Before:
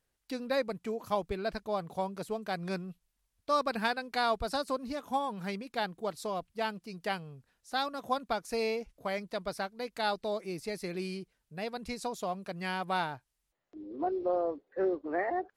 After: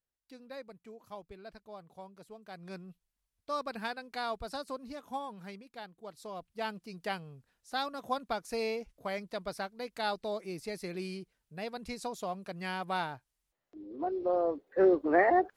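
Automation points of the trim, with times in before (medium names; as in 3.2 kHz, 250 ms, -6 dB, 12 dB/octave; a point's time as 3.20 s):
2.38 s -14.5 dB
2.89 s -6.5 dB
5.22 s -6.5 dB
5.92 s -13.5 dB
6.70 s -2 dB
14.08 s -2 dB
14.99 s +7.5 dB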